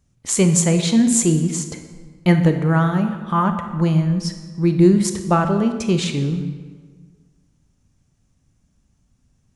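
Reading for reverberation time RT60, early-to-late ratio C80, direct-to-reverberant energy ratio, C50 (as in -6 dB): 1.5 s, 10.0 dB, 7.0 dB, 8.5 dB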